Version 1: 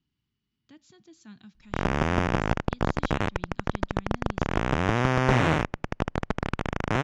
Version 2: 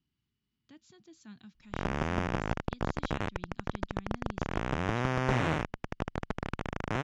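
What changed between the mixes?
background −6.5 dB
reverb: off

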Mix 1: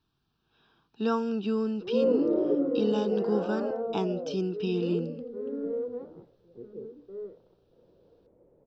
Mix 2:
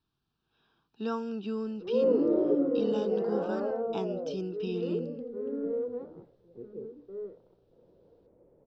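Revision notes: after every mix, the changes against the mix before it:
speech −5.5 dB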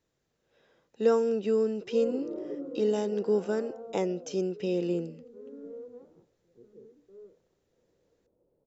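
speech: remove phaser with its sweep stopped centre 2,000 Hz, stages 6
background −11.0 dB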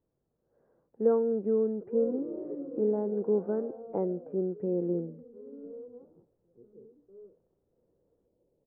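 master: add Gaussian smoothing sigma 8.1 samples

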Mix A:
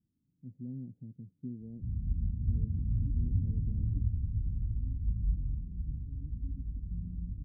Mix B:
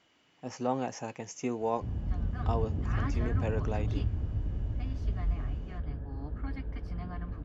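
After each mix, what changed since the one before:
master: remove inverse Chebyshev low-pass filter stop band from 960 Hz, stop band 70 dB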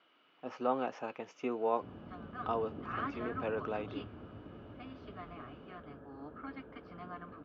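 master: add loudspeaker in its box 300–3,600 Hz, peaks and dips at 840 Hz −3 dB, 1,300 Hz +8 dB, 1,900 Hz −6 dB

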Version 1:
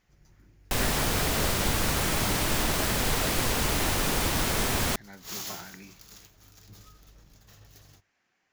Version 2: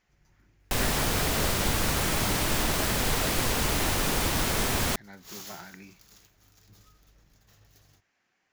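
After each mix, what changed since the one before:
first sound −6.0 dB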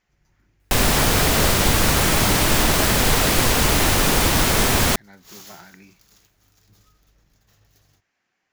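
second sound +9.0 dB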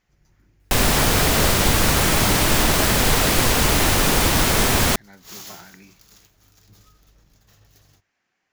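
first sound +4.5 dB

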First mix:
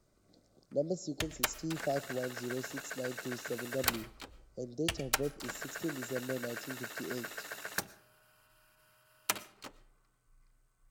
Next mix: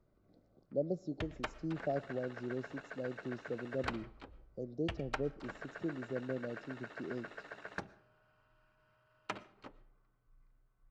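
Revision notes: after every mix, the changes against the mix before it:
master: add head-to-tape spacing loss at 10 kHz 35 dB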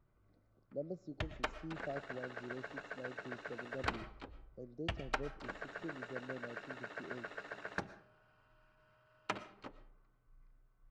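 speech −7.5 dB
background: send +7.5 dB

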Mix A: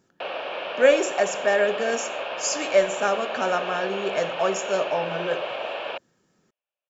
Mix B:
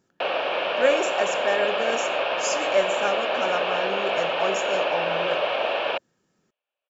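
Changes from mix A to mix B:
speech −3.5 dB
background +6.0 dB

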